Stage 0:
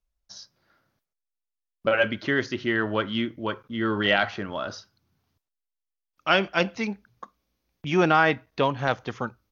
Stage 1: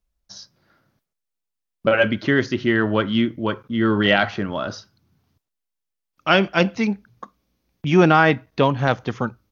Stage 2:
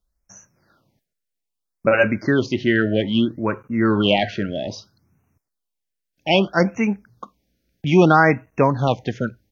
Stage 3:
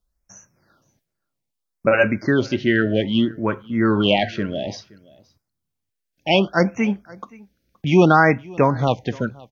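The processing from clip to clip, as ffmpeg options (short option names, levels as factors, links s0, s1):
-af "equalizer=f=160:w=0.54:g=6,volume=1.5"
-af "afftfilt=real='re*(1-between(b*sr/1024,940*pow(4100/940,0.5+0.5*sin(2*PI*0.62*pts/sr))/1.41,940*pow(4100/940,0.5+0.5*sin(2*PI*0.62*pts/sr))*1.41))':imag='im*(1-between(b*sr/1024,940*pow(4100/940,0.5+0.5*sin(2*PI*0.62*pts/sr))/1.41,940*pow(4100/940,0.5+0.5*sin(2*PI*0.62*pts/sr))*1.41))':win_size=1024:overlap=0.75,volume=1.12"
-af "aecho=1:1:522:0.0631"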